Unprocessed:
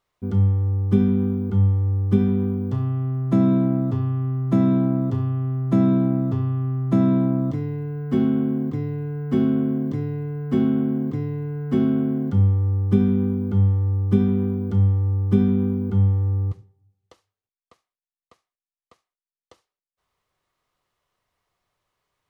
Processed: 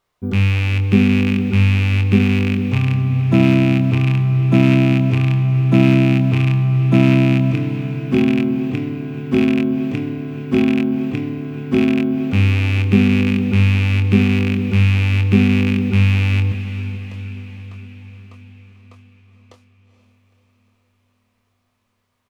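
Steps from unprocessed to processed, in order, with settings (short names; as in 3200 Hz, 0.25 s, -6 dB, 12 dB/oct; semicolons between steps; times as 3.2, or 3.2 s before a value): rattling part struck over -19 dBFS, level -17 dBFS; doubler 24 ms -7 dB; on a send: diffused feedback echo 0.465 s, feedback 59%, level -12 dB; on the sum: gain +4 dB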